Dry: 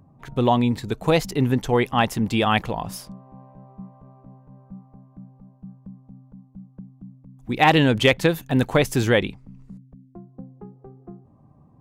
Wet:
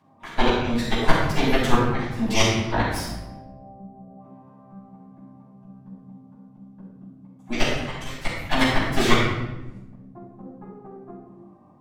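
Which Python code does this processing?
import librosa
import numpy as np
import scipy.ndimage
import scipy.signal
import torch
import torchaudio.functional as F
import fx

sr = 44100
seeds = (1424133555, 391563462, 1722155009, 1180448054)

y = fx.weighting(x, sr, curve='A')
y = fx.cheby_harmonics(y, sr, harmonics=(4, 8), levels_db=(-6, -13), full_scale_db=-1.5)
y = fx.spec_box(y, sr, start_s=3.15, length_s=1.05, low_hz=800.0, high_hz=7900.0, gain_db=-19)
y = fx.gate_flip(y, sr, shuts_db=-6.0, range_db=-31)
y = fx.room_shoebox(y, sr, seeds[0], volume_m3=440.0, walls='mixed', distance_m=8.0)
y = F.gain(torch.from_numpy(y), -8.5).numpy()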